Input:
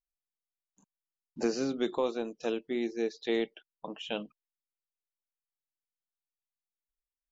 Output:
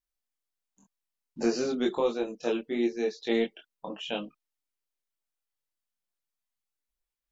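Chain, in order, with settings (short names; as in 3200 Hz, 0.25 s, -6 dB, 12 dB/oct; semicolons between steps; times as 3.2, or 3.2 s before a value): chorus voices 4, 0.51 Hz, delay 23 ms, depth 3 ms; gain +6 dB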